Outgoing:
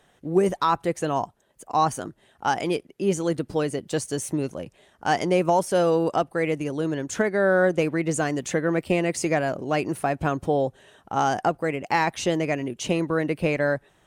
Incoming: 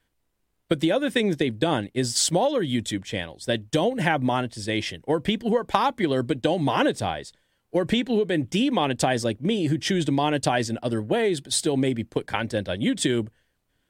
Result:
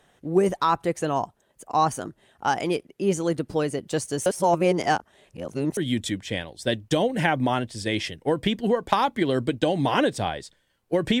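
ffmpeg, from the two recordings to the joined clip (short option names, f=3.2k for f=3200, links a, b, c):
-filter_complex "[0:a]apad=whole_dur=11.2,atrim=end=11.2,asplit=2[a][b];[a]atrim=end=4.262[c];[b]atrim=start=4.258:end=5.772,asetpts=PTS-STARTPTS,areverse[d];[1:a]atrim=start=2.588:end=8.02[e];[c][d]acrossfade=d=0.004:c1=hsin:c2=hsin[f];[f][e]acrossfade=d=0.004:c1=hsin:c2=hsin"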